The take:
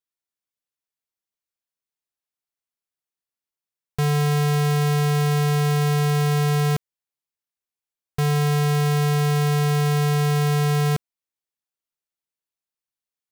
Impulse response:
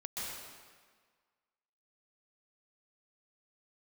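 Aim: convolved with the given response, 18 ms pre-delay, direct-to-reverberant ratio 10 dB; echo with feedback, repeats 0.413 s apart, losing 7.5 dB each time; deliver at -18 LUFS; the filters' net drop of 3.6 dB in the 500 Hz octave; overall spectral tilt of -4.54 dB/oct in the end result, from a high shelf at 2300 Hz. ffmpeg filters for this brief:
-filter_complex "[0:a]equalizer=f=500:t=o:g=-4.5,highshelf=f=2.3k:g=7.5,aecho=1:1:413|826|1239|1652|2065:0.422|0.177|0.0744|0.0312|0.0131,asplit=2[a][b];[1:a]atrim=start_sample=2205,adelay=18[c];[b][c]afir=irnorm=-1:irlink=0,volume=-12dB[d];[a][d]amix=inputs=2:normalize=0,volume=2dB"

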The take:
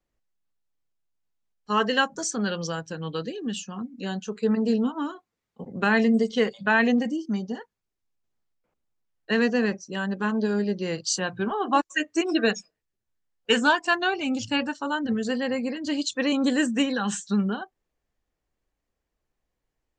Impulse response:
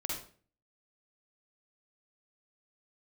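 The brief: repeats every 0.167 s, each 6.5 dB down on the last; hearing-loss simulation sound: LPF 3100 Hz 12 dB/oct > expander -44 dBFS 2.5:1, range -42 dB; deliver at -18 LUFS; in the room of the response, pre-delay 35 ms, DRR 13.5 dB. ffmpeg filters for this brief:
-filter_complex "[0:a]aecho=1:1:167|334|501|668|835|1002:0.473|0.222|0.105|0.0491|0.0231|0.0109,asplit=2[a][b];[1:a]atrim=start_sample=2205,adelay=35[c];[b][c]afir=irnorm=-1:irlink=0,volume=-16dB[d];[a][d]amix=inputs=2:normalize=0,lowpass=3.1k,agate=range=-42dB:threshold=-44dB:ratio=2.5,volume=7dB"

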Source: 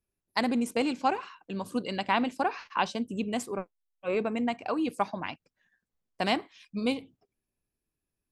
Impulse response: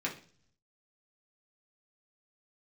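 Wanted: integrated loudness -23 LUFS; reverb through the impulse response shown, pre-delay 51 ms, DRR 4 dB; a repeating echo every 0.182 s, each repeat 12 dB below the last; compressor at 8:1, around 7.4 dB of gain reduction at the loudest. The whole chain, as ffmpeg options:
-filter_complex "[0:a]acompressor=threshold=-29dB:ratio=8,aecho=1:1:182|364|546:0.251|0.0628|0.0157,asplit=2[a][b];[1:a]atrim=start_sample=2205,adelay=51[c];[b][c]afir=irnorm=-1:irlink=0,volume=-8.5dB[d];[a][d]amix=inputs=2:normalize=0,volume=11dB"

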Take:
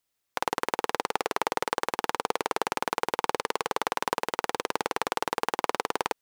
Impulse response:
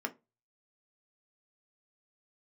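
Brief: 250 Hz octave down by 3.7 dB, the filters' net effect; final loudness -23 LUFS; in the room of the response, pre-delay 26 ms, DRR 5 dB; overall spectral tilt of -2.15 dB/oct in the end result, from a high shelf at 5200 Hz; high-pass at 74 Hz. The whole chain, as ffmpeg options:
-filter_complex "[0:a]highpass=74,equalizer=f=250:t=o:g=-5.5,highshelf=f=5.2k:g=-4.5,asplit=2[a][b];[1:a]atrim=start_sample=2205,adelay=26[c];[b][c]afir=irnorm=-1:irlink=0,volume=-8dB[d];[a][d]amix=inputs=2:normalize=0,volume=7dB"

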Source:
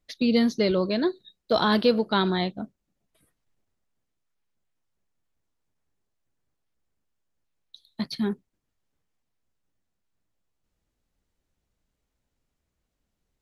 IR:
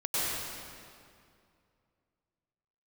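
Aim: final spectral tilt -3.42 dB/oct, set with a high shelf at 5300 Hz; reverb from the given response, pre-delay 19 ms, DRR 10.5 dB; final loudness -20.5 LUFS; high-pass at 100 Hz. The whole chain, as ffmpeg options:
-filter_complex "[0:a]highpass=100,highshelf=f=5.3k:g=8,asplit=2[a][b];[1:a]atrim=start_sample=2205,adelay=19[c];[b][c]afir=irnorm=-1:irlink=0,volume=-20dB[d];[a][d]amix=inputs=2:normalize=0,volume=3.5dB"

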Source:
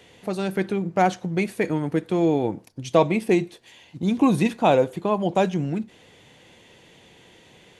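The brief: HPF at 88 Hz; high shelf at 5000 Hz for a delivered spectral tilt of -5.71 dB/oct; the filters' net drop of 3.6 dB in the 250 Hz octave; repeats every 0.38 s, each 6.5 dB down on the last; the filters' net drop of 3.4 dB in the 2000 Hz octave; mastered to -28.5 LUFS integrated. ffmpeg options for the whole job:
-af "highpass=88,equalizer=f=250:t=o:g=-5,equalizer=f=2k:t=o:g=-5,highshelf=f=5k:g=3.5,aecho=1:1:380|760|1140|1520|1900|2280:0.473|0.222|0.105|0.0491|0.0231|0.0109,volume=-4dB"

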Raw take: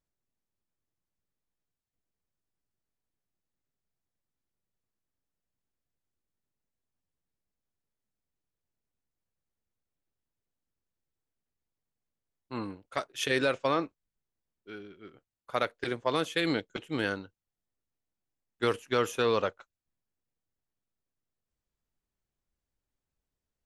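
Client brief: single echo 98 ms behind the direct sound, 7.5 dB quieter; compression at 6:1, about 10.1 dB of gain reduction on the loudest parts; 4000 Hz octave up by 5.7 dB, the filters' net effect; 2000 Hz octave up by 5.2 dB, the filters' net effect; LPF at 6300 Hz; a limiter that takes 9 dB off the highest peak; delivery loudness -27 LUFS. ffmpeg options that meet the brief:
-af "lowpass=6.3k,equalizer=f=2k:t=o:g=5.5,equalizer=f=4k:t=o:g=5.5,acompressor=threshold=-31dB:ratio=6,alimiter=limit=-23.5dB:level=0:latency=1,aecho=1:1:98:0.422,volume=11dB"

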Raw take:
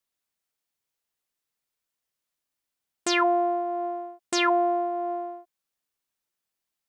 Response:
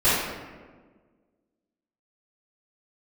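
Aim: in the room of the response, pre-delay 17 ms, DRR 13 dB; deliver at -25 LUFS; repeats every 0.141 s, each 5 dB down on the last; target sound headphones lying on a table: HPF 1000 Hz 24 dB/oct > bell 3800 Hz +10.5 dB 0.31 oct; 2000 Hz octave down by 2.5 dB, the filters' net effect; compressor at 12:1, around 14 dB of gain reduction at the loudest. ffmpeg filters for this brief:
-filter_complex "[0:a]equalizer=f=2k:t=o:g=-3.5,acompressor=threshold=-33dB:ratio=12,aecho=1:1:141|282|423|564|705|846|987:0.562|0.315|0.176|0.0988|0.0553|0.031|0.0173,asplit=2[a][b];[1:a]atrim=start_sample=2205,adelay=17[c];[b][c]afir=irnorm=-1:irlink=0,volume=-31.5dB[d];[a][d]amix=inputs=2:normalize=0,highpass=f=1k:w=0.5412,highpass=f=1k:w=1.3066,equalizer=f=3.8k:t=o:w=0.31:g=10.5,volume=15dB"

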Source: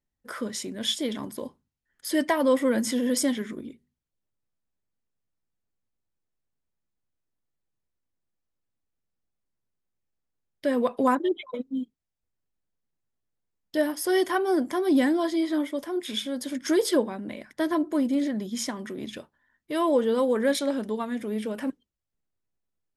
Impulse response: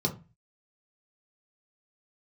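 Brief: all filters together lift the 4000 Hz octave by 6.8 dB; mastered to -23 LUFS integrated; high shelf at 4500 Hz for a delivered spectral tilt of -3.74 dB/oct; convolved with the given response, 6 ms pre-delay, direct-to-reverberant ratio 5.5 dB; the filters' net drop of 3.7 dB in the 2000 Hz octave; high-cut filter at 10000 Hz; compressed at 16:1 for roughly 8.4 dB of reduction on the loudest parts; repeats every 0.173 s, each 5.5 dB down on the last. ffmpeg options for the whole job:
-filter_complex "[0:a]lowpass=10k,equalizer=f=2k:t=o:g=-7,equalizer=f=4k:t=o:g=8,highshelf=f=4.5k:g=5.5,acompressor=threshold=-25dB:ratio=16,aecho=1:1:173|346|519|692|865|1038|1211:0.531|0.281|0.149|0.079|0.0419|0.0222|0.0118,asplit=2[a][b];[1:a]atrim=start_sample=2205,adelay=6[c];[b][c]afir=irnorm=-1:irlink=0,volume=-12.5dB[d];[a][d]amix=inputs=2:normalize=0,volume=3dB"

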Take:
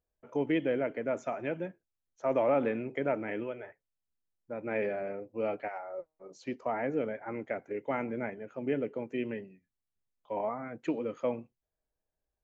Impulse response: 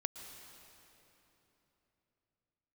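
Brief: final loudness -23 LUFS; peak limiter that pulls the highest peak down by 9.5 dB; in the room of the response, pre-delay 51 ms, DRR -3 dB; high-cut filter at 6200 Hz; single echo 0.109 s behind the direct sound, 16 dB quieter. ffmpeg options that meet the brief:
-filter_complex "[0:a]lowpass=6.2k,alimiter=level_in=2.5dB:limit=-24dB:level=0:latency=1,volume=-2.5dB,aecho=1:1:109:0.158,asplit=2[a][b];[1:a]atrim=start_sample=2205,adelay=51[c];[b][c]afir=irnorm=-1:irlink=0,volume=3.5dB[d];[a][d]amix=inputs=2:normalize=0,volume=10.5dB"

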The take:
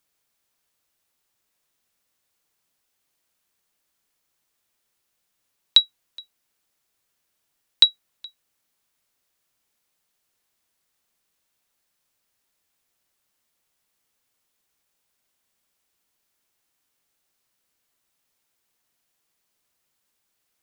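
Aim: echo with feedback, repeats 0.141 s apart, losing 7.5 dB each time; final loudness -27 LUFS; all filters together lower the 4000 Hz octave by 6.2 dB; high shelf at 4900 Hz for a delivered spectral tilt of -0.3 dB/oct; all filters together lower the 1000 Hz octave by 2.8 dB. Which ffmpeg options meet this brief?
-af "equalizer=f=1k:t=o:g=-3.5,equalizer=f=4k:t=o:g=-9,highshelf=f=4.9k:g=7.5,aecho=1:1:141|282|423|564|705:0.422|0.177|0.0744|0.0312|0.0131,volume=-1.5dB"

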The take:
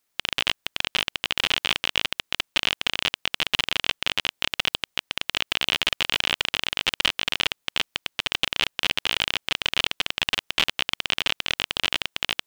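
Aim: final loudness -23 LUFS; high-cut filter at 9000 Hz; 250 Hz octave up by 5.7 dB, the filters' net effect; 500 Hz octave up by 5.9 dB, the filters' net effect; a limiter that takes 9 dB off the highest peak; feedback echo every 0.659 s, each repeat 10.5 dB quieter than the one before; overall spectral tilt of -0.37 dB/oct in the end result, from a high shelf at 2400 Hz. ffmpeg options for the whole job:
-af "lowpass=9k,equalizer=f=250:t=o:g=5.5,equalizer=f=500:t=o:g=5.5,highshelf=f=2.4k:g=7.5,alimiter=limit=-5dB:level=0:latency=1,aecho=1:1:659|1318|1977:0.299|0.0896|0.0269,volume=2dB"

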